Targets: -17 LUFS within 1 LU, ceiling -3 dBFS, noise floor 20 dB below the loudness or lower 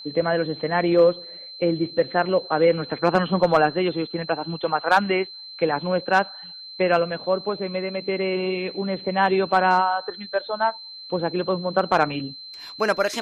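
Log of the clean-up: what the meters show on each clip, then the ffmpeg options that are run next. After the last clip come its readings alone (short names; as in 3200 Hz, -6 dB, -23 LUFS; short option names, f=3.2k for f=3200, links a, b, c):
steady tone 4100 Hz; tone level -37 dBFS; loudness -22.5 LUFS; peak -7.0 dBFS; loudness target -17.0 LUFS
-> -af "bandreject=f=4.1k:w=30"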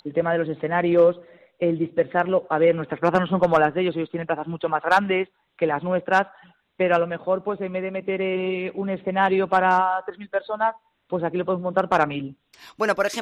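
steady tone none; loudness -23.0 LUFS; peak -7.0 dBFS; loudness target -17.0 LUFS
-> -af "volume=6dB,alimiter=limit=-3dB:level=0:latency=1"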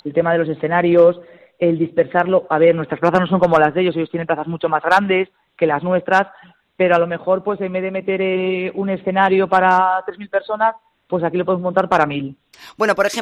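loudness -17.0 LUFS; peak -3.0 dBFS; noise floor -64 dBFS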